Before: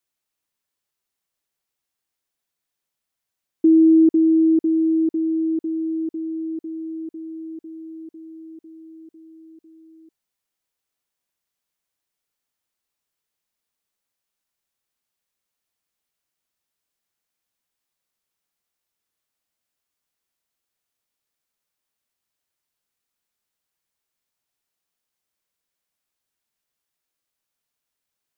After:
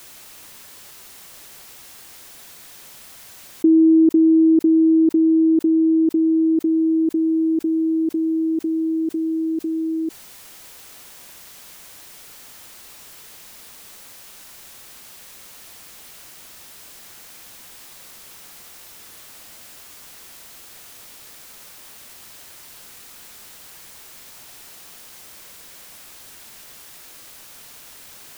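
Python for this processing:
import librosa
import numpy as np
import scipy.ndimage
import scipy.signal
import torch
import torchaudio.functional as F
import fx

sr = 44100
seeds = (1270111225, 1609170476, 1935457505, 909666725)

y = fx.env_flatten(x, sr, amount_pct=70)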